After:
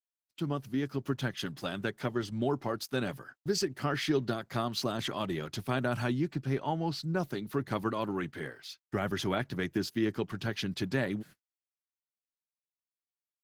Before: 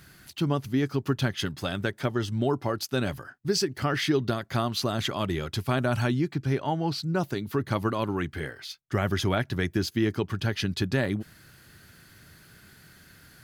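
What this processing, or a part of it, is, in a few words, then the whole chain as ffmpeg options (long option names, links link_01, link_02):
video call: -af "highpass=frequency=120:width=0.5412,highpass=frequency=120:width=1.3066,dynaudnorm=framelen=310:gausssize=7:maxgain=3dB,agate=range=-58dB:threshold=-41dB:ratio=16:detection=peak,volume=-7dB" -ar 48000 -c:a libopus -b:a 16k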